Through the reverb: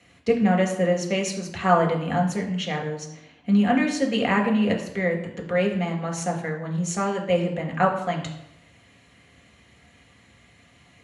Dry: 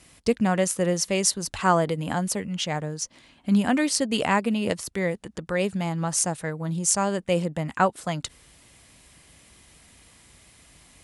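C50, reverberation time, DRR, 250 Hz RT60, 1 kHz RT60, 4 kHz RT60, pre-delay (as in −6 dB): 7.5 dB, 0.85 s, 0.0 dB, 0.75 s, 0.85 s, 0.65 s, 3 ms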